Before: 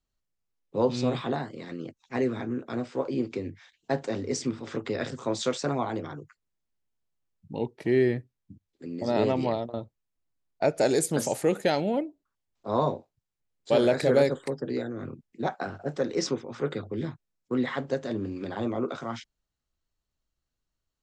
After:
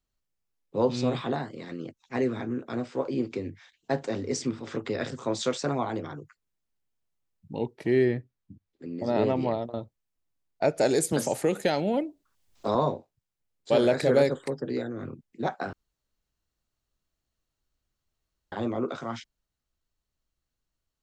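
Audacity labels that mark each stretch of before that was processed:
8.040000	9.600000	low-pass filter 4,800 Hz → 2,400 Hz 6 dB per octave
11.120000	12.750000	multiband upward and downward compressor depth 70%
15.730000	18.520000	fill with room tone

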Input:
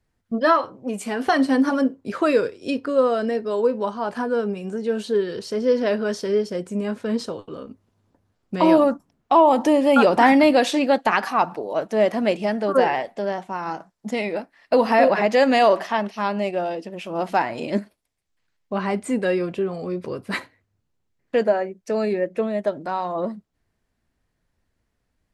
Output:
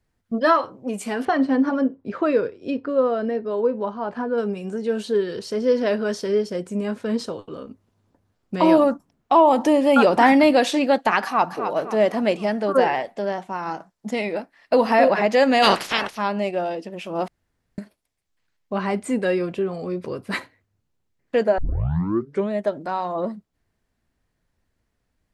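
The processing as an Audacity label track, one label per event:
1.250000	4.380000	head-to-tape spacing loss at 10 kHz 23 dB
11.240000	11.640000	delay throw 260 ms, feedback 45%, level −8 dB
15.620000	16.160000	ceiling on every frequency bin ceiling under each frame's peak by 28 dB
17.280000	17.780000	fill with room tone
21.580000	21.580000	tape start 0.93 s

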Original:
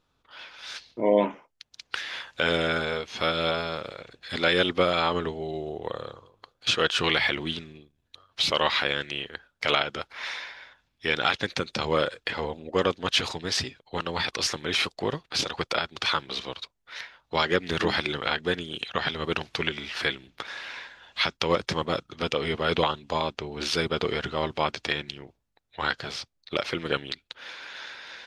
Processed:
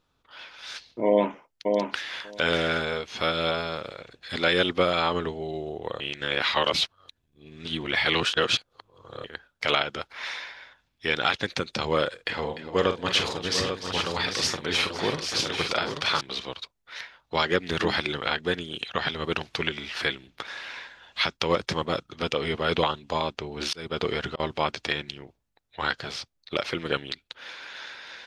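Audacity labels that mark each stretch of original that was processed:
1.060000	2.240000	delay throw 590 ms, feedback 10%, level −3.5 dB
6.000000	9.240000	reverse
12.140000	16.210000	multi-tap delay 45/297/509/794/838 ms −9.5/−12.5/−17/−9.5/−7.5 dB
23.190000	24.400000	volume swells 290 ms

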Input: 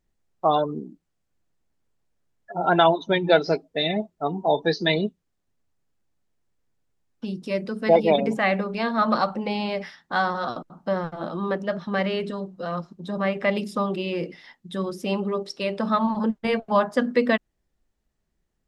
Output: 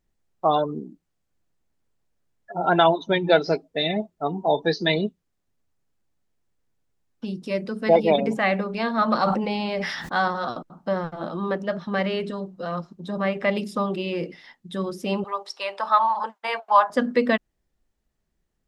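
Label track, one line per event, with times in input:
9.150000	10.280000	level that may fall only so fast at most 34 dB per second
15.240000	16.900000	high-pass with resonance 900 Hz, resonance Q 2.6

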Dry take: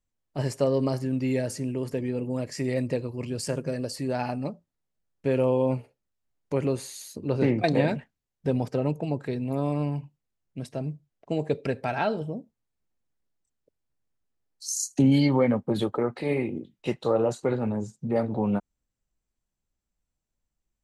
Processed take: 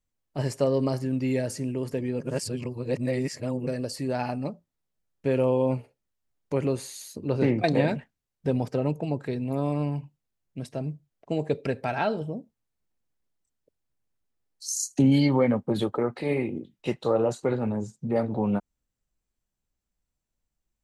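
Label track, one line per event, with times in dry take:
2.200000	3.670000	reverse

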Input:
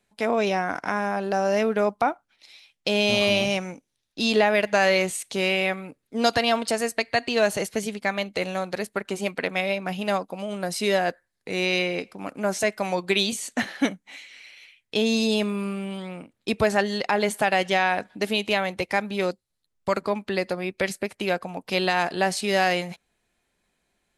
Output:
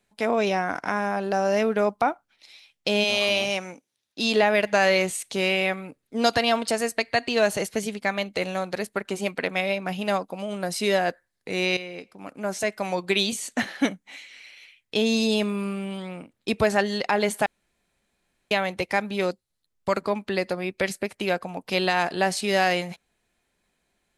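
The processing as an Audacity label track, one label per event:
3.030000	4.410000	high-pass filter 670 Hz → 160 Hz 6 dB per octave
11.770000	13.630000	fade in equal-power, from −13 dB
17.460000	18.510000	fill with room tone

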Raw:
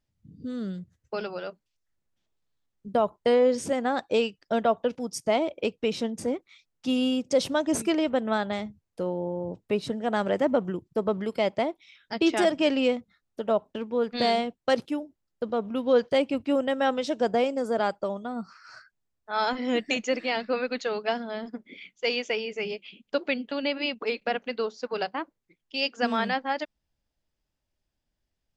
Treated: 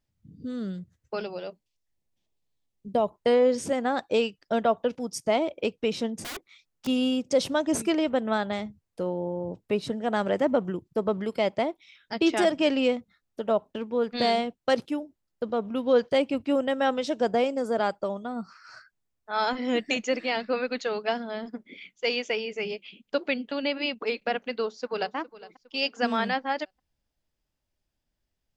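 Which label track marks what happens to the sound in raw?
1.220000	3.140000	parametric band 1,400 Hz −10 dB 0.6 octaves
6.220000	6.870000	wrap-around overflow gain 31.5 dB
24.540000	25.150000	delay throw 410 ms, feedback 45%, level −17.5 dB

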